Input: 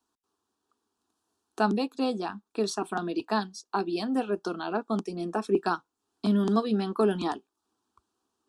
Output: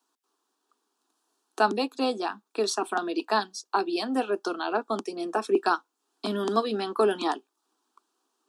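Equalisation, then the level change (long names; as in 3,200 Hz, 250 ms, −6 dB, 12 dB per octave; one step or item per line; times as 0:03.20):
Butterworth high-pass 240 Hz 36 dB per octave
low-shelf EQ 410 Hz −6 dB
+5.0 dB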